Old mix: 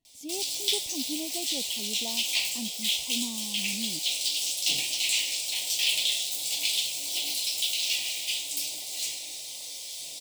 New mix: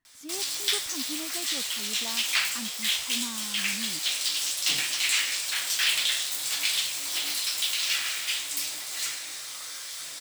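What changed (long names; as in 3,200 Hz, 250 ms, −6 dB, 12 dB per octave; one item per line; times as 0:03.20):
speech −3.5 dB
master: remove Chebyshev band-stop filter 730–2,800 Hz, order 2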